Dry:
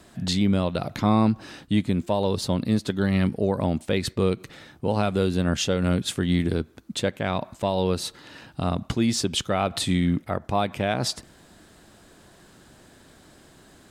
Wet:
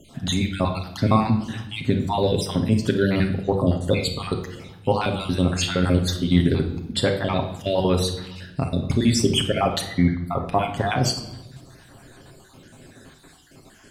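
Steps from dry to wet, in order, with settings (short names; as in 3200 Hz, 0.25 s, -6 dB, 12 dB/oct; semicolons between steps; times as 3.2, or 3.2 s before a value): random spectral dropouts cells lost 50%; 9.81–10.25 brick-wall FIR low-pass 2300 Hz; reverb RT60 0.85 s, pre-delay 7 ms, DRR 2.5 dB; gain +4 dB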